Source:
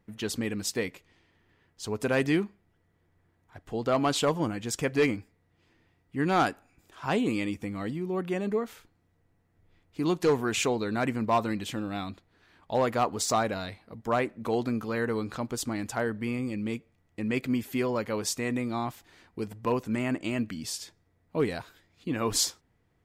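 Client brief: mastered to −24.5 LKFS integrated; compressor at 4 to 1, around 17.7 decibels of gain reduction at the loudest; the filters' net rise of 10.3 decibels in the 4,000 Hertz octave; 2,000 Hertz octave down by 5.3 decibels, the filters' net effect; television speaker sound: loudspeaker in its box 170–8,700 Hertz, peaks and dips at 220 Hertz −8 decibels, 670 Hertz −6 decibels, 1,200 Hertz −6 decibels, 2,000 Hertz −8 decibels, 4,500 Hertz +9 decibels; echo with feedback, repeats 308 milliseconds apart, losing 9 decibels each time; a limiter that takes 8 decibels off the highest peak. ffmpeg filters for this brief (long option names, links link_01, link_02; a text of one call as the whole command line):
ffmpeg -i in.wav -af "equalizer=frequency=2000:width_type=o:gain=-5,equalizer=frequency=4000:width_type=o:gain=8,acompressor=threshold=-42dB:ratio=4,alimiter=level_in=11dB:limit=-24dB:level=0:latency=1,volume=-11dB,highpass=frequency=170:width=0.5412,highpass=frequency=170:width=1.3066,equalizer=frequency=220:width_type=q:width=4:gain=-8,equalizer=frequency=670:width_type=q:width=4:gain=-6,equalizer=frequency=1200:width_type=q:width=4:gain=-6,equalizer=frequency=2000:width_type=q:width=4:gain=-8,equalizer=frequency=4500:width_type=q:width=4:gain=9,lowpass=frequency=8700:width=0.5412,lowpass=frequency=8700:width=1.3066,aecho=1:1:308|616|924|1232:0.355|0.124|0.0435|0.0152,volume=21dB" out.wav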